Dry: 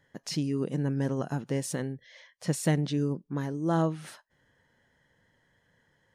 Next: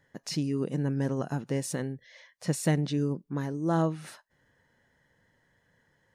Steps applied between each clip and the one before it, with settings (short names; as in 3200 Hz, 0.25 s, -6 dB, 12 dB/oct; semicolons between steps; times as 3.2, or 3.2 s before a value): notch 3200 Hz, Q 16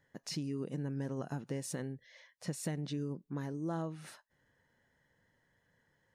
compressor 6:1, threshold -28 dBFS, peak gain reduction 8 dB; gain -5.5 dB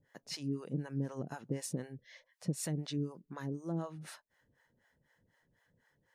harmonic tremolo 4 Hz, depth 100%, crossover 540 Hz; gain +4.5 dB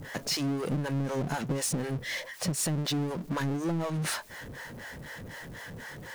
power-law curve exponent 0.5; compressor, threshold -34 dBFS, peak gain reduction 7.5 dB; gain +6.5 dB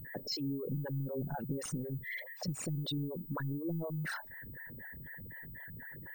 formant sharpening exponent 3; pulse-width modulation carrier 16000 Hz; gain -6.5 dB